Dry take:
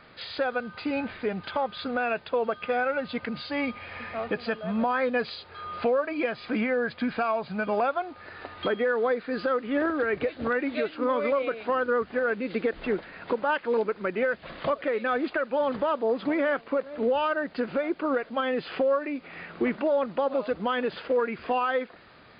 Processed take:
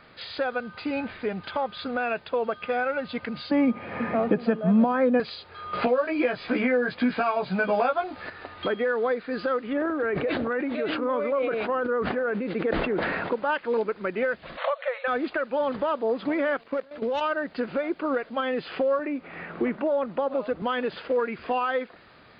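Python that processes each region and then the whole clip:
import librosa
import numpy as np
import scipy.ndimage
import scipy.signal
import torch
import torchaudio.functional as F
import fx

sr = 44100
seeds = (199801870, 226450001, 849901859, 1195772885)

y = fx.chain(x, sr, fx.highpass(hz=160.0, slope=24),
    fx.tilt_eq(slope=-4.5),
    fx.band_squash(depth_pct=70), at=(3.51, 5.2))
y = fx.chain(y, sr, fx.doubler(ms=16.0, db=-2.0),
    fx.band_squash(depth_pct=70), at=(5.73, 8.3))
y = fx.chain(y, sr, fx.lowpass(hz=1400.0, slope=6),
    fx.low_shelf(hz=94.0, db=-11.0),
    fx.sustainer(db_per_s=20.0), at=(9.73, 13.32))
y = fx.chain(y, sr, fx.brickwall_bandpass(low_hz=480.0, high_hz=4400.0),
    fx.band_squash(depth_pct=70), at=(14.57, 15.08))
y = fx.chain(y, sr, fx.self_delay(depth_ms=0.056),
    fx.high_shelf(hz=2200.0, db=5.0),
    fx.level_steps(step_db=13), at=(16.57, 17.21))
y = fx.chain(y, sr, fx.lowpass(hz=2200.0, slope=6),
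    fx.band_squash(depth_pct=40), at=(18.99, 20.62))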